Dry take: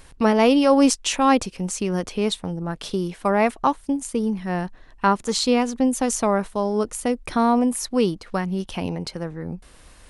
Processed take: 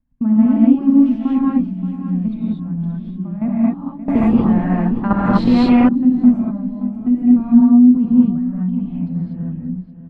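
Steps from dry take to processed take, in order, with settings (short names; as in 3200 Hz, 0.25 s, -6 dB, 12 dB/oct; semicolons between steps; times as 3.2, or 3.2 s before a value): expander -39 dBFS; EQ curve 110 Hz 0 dB, 250 Hz +12 dB, 400 Hz -23 dB, 630 Hz -10 dB, 7000 Hz -19 dB; level quantiser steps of 14 dB; air absorption 420 m; feedback echo 0.576 s, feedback 32%, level -13 dB; non-linear reverb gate 0.27 s rising, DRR -7 dB; 4.08–5.89 spectral compressor 2:1; gain -2.5 dB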